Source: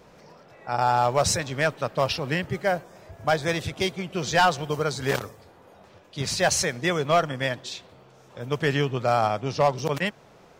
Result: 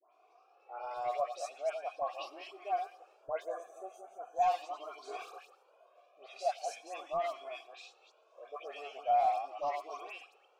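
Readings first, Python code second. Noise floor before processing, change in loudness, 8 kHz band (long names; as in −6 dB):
−53 dBFS, −12.0 dB, −24.0 dB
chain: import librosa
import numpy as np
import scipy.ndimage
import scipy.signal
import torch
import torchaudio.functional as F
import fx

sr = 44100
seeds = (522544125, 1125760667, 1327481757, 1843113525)

p1 = fx.reverse_delay(x, sr, ms=131, wet_db=-7.5)
p2 = scipy.signal.sosfilt(scipy.signal.cheby1(4, 1.0, 320.0, 'highpass', fs=sr, output='sos'), p1)
p3 = fx.dynamic_eq(p2, sr, hz=1700.0, q=0.88, threshold_db=-35.0, ratio=4.0, max_db=-5)
p4 = fx.spec_box(p3, sr, start_s=3.15, length_s=1.16, low_hz=1800.0, high_hz=5900.0, gain_db=-24)
p5 = fx.peak_eq(p4, sr, hz=12000.0, db=14.0, octaves=1.8)
p6 = fx.rider(p5, sr, range_db=4, speed_s=0.5)
p7 = p5 + (p6 * 10.0 ** (-1.5 / 20.0))
p8 = fx.vowel_filter(p7, sr, vowel='a')
p9 = np.clip(p8, -10.0 ** (-16.0 / 20.0), 10.0 ** (-16.0 / 20.0))
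p10 = fx.dispersion(p9, sr, late='highs', ms=135.0, hz=1800.0)
p11 = p10 + fx.echo_thinned(p10, sr, ms=110, feedback_pct=57, hz=420.0, wet_db=-23.0, dry=0)
p12 = fx.comb_cascade(p11, sr, direction='rising', hz=0.41)
y = p12 * 10.0 ** (-5.0 / 20.0)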